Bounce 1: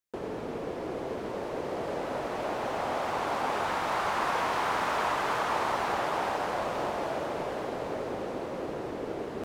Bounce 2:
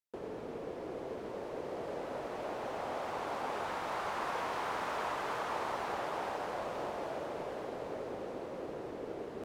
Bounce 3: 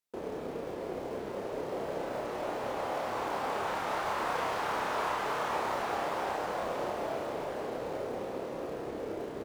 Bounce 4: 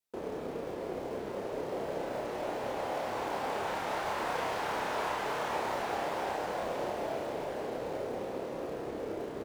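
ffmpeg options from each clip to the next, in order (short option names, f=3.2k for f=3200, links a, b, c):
-af "equalizer=f=470:w=1.5:g=3,volume=-8.5dB"
-filter_complex "[0:a]asplit=2[a][b];[b]acrusher=bits=2:mode=log:mix=0:aa=0.000001,volume=-11dB[c];[a][c]amix=inputs=2:normalize=0,asplit=2[d][e];[e]adelay=30,volume=-2.5dB[f];[d][f]amix=inputs=2:normalize=0"
-af "adynamicequalizer=threshold=0.00355:dfrequency=1200:dqfactor=3.2:tfrequency=1200:tqfactor=3.2:attack=5:release=100:ratio=0.375:range=2.5:mode=cutabove:tftype=bell"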